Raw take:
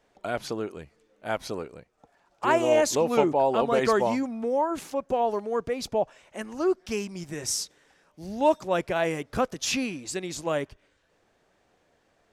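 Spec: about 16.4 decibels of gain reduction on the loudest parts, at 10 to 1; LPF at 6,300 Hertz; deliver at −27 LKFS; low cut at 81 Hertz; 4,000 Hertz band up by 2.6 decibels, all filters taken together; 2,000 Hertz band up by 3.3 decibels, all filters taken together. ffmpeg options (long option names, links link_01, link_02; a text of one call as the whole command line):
ffmpeg -i in.wav -af "highpass=81,lowpass=6300,equalizer=frequency=2000:width_type=o:gain=3.5,equalizer=frequency=4000:width_type=o:gain=3.5,acompressor=threshold=-33dB:ratio=10,volume=11dB" out.wav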